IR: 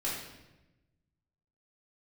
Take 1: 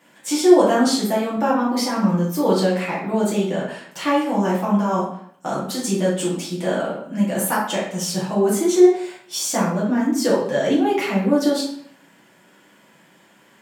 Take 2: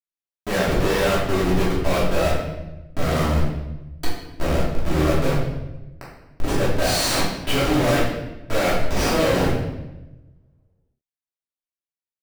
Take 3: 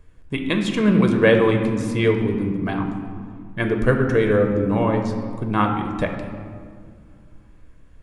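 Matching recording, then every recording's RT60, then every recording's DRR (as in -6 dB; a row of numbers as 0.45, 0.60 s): 2; 0.60, 1.0, 2.1 s; -8.0, -8.0, 3.5 dB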